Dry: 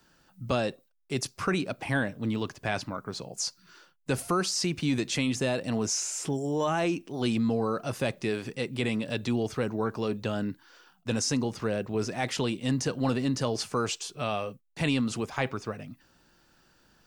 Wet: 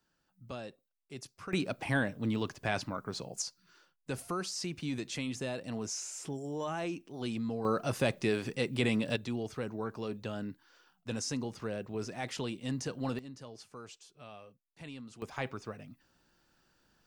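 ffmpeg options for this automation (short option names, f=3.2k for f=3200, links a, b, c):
-af "asetnsamples=n=441:p=0,asendcmd='1.53 volume volume -2.5dB;3.42 volume volume -9dB;7.65 volume volume -0.5dB;9.16 volume volume -8dB;13.19 volume volume -19.5dB;15.22 volume volume -7.5dB',volume=-15dB"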